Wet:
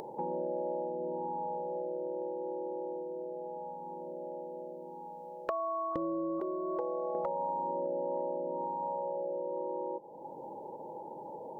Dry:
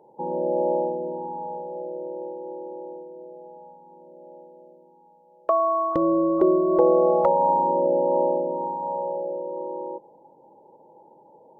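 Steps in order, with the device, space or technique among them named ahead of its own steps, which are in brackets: 6.40–7.15 s: bass shelf 480 Hz -12 dB; upward and downward compression (upward compressor, threshold -33 dBFS; compression 5:1, threshold -32 dBFS, peak gain reduction 15 dB); trim -1 dB

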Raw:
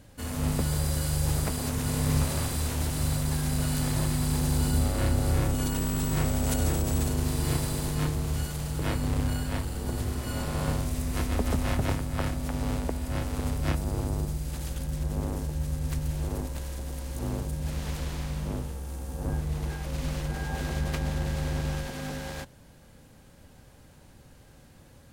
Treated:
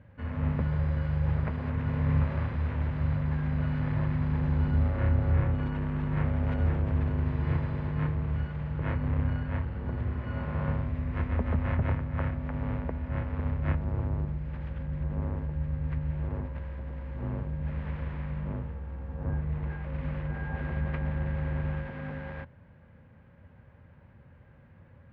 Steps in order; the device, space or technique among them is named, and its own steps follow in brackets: bass cabinet (cabinet simulation 65–2100 Hz, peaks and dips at 88 Hz +6 dB, 300 Hz -9 dB, 420 Hz -5 dB, 740 Hz -7 dB, 1.3 kHz -3 dB)

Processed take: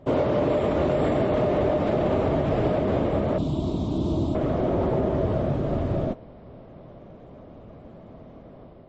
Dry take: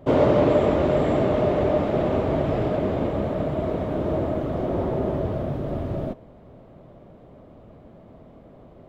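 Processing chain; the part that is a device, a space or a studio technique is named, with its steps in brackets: 3.38–4.35 s: FFT filter 330 Hz 0 dB, 500 Hz -14 dB, 1 kHz -5 dB, 1.8 kHz -24 dB, 3.6 kHz +6 dB; low-bitrate web radio (level rider gain up to 5 dB; peak limiter -12 dBFS, peak gain reduction 6.5 dB; trim -2 dB; MP3 32 kbps 24 kHz)

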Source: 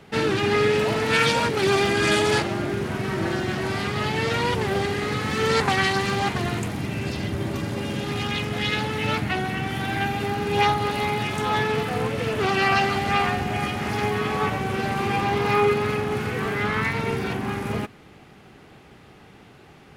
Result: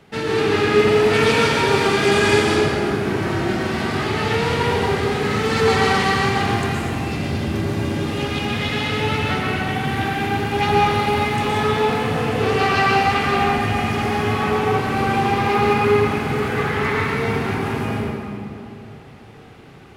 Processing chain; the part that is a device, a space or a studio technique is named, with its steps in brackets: stairwell (reverberation RT60 2.8 s, pre-delay 110 ms, DRR -5 dB); trim -2 dB

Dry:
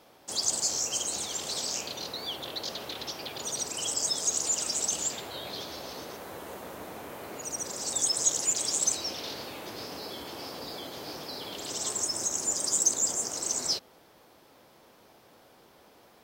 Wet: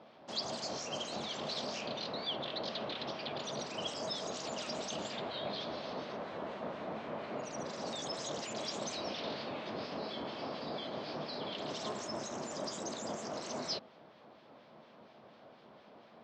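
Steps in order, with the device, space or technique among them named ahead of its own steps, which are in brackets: guitar amplifier with harmonic tremolo (harmonic tremolo 4.2 Hz, depth 50%, crossover 1.5 kHz; saturation -19 dBFS, distortion -22 dB; cabinet simulation 99–4200 Hz, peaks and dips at 150 Hz +5 dB, 220 Hz +8 dB, 630 Hz +7 dB, 1.1 kHz +3 dB)

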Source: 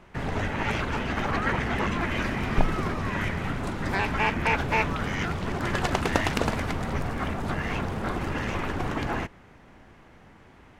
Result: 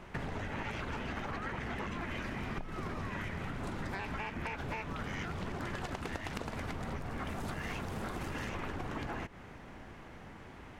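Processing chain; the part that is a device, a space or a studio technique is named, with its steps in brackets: 7.27–8.49 s: treble shelf 4.9 kHz +10 dB; serial compression, peaks first (compression, threshold -32 dBFS, peak gain reduction 17 dB; compression 3:1, threshold -39 dBFS, peak gain reduction 8.5 dB); trim +2 dB

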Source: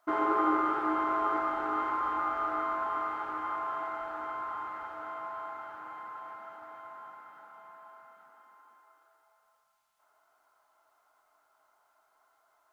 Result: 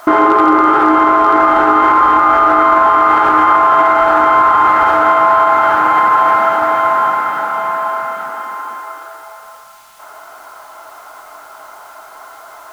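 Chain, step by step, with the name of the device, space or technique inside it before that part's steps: loud club master (compression 2:1, threshold -36 dBFS, peak gain reduction 7.5 dB; hard clipper -25.5 dBFS, distortion -36 dB; loudness maximiser +35.5 dB); trim -1 dB

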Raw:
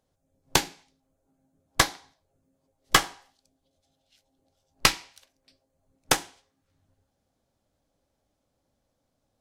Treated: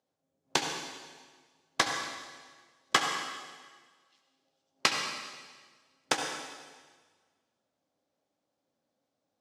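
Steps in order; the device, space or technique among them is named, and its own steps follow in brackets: supermarket ceiling speaker (band-pass 210–7000 Hz; reverberation RT60 1.5 s, pre-delay 64 ms, DRR 3.5 dB); 2.97–4.99 s: high-pass 110 Hz; trim -5.5 dB

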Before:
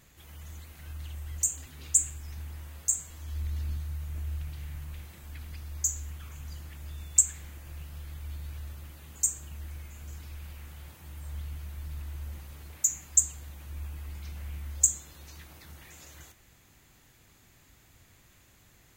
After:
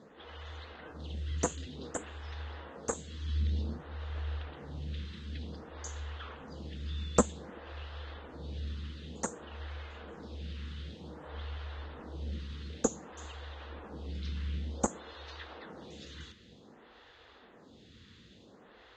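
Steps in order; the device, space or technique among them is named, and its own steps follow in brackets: vibe pedal into a guitar amplifier (lamp-driven phase shifter 0.54 Hz; valve stage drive 13 dB, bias 0.7; cabinet simulation 82–4200 Hz, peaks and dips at 94 Hz -6 dB, 130 Hz -8 dB, 220 Hz +5 dB, 470 Hz +9 dB, 2.3 kHz -9 dB, 3.6 kHz +4 dB); trim +13.5 dB

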